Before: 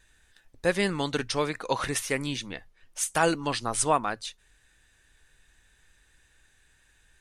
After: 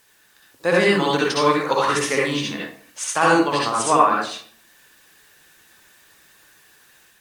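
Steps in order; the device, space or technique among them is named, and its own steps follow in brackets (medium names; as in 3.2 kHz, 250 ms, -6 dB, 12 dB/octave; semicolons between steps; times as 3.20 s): filmed off a television (band-pass 210–7400 Hz; peaking EQ 1.1 kHz +6 dB 0.3 oct; reverberation RT60 0.50 s, pre-delay 55 ms, DRR -4.5 dB; white noise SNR 34 dB; level rider gain up to 4 dB; AAC 96 kbps 48 kHz)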